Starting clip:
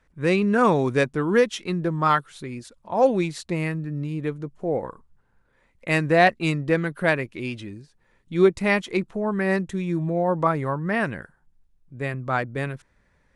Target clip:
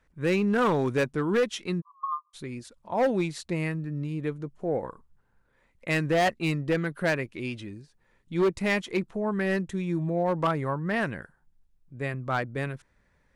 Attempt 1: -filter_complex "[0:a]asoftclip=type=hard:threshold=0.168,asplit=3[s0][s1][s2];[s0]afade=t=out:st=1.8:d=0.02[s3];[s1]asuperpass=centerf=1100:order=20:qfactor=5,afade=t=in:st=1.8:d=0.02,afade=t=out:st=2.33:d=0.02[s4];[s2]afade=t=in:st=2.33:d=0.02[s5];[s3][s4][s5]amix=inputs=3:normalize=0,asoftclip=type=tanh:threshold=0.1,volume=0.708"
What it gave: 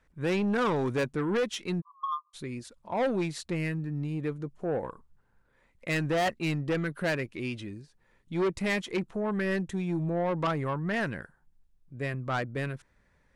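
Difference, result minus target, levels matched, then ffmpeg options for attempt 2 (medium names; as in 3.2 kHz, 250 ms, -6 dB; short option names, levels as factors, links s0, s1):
saturation: distortion +19 dB
-filter_complex "[0:a]asoftclip=type=hard:threshold=0.168,asplit=3[s0][s1][s2];[s0]afade=t=out:st=1.8:d=0.02[s3];[s1]asuperpass=centerf=1100:order=20:qfactor=5,afade=t=in:st=1.8:d=0.02,afade=t=out:st=2.33:d=0.02[s4];[s2]afade=t=in:st=2.33:d=0.02[s5];[s3][s4][s5]amix=inputs=3:normalize=0,asoftclip=type=tanh:threshold=0.376,volume=0.708"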